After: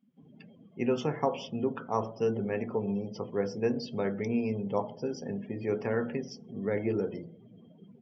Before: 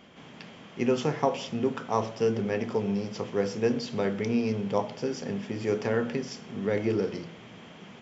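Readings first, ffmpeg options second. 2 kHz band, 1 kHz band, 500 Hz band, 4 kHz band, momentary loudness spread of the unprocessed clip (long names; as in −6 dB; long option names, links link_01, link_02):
−4.5 dB, −3.0 dB, −3.0 dB, −6.5 dB, 17 LU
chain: -af "afftdn=noise_reduction=33:noise_floor=-41,volume=-3dB"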